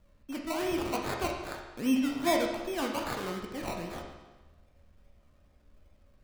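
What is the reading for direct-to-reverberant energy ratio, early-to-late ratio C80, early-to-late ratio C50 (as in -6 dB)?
0.5 dB, 6.0 dB, 4.0 dB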